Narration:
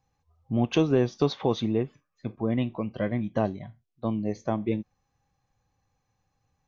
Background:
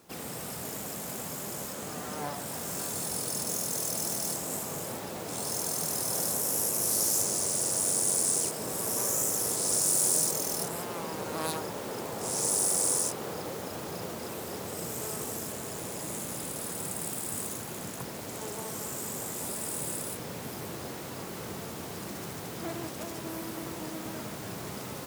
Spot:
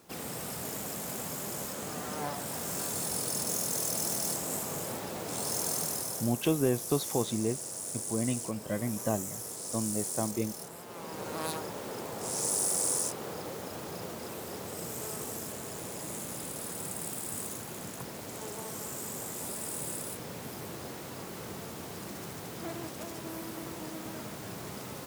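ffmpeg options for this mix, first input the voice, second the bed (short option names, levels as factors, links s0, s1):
-filter_complex "[0:a]adelay=5700,volume=0.562[s0];[1:a]volume=2.51,afade=t=out:st=5.74:d=0.56:silence=0.298538,afade=t=in:st=10.84:d=0.43:silence=0.398107[s1];[s0][s1]amix=inputs=2:normalize=0"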